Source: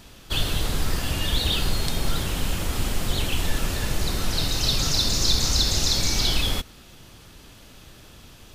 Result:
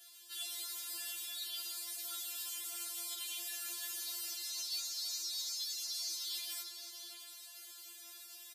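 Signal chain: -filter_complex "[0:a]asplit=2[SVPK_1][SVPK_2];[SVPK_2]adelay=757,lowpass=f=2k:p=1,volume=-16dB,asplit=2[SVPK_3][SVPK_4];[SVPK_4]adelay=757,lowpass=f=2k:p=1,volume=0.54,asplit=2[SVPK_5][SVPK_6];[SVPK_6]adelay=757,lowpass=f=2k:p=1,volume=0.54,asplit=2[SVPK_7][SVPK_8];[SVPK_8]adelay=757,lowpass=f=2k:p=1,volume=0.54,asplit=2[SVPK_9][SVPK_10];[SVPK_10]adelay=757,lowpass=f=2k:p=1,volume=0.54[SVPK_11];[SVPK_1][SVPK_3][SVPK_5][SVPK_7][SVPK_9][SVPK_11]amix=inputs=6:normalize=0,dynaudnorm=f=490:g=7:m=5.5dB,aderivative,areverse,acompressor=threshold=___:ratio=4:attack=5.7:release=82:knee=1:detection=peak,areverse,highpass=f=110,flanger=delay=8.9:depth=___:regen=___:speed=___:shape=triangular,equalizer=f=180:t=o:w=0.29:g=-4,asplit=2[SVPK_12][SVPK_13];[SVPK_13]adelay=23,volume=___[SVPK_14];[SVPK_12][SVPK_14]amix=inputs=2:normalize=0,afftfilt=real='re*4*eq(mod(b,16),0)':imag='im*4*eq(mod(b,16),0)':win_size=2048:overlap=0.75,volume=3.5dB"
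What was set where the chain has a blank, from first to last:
-39dB, 6, -50, 0.81, -10.5dB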